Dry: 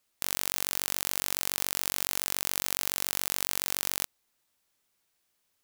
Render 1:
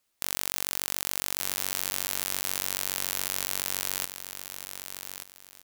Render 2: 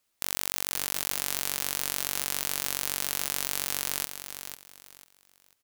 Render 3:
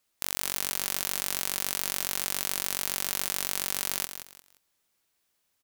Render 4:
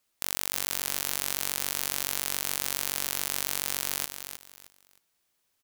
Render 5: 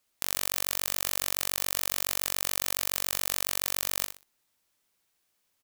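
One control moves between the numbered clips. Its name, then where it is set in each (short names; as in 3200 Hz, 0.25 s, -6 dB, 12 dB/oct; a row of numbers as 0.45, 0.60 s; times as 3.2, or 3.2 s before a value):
feedback echo, time: 1179, 495, 175, 311, 62 ms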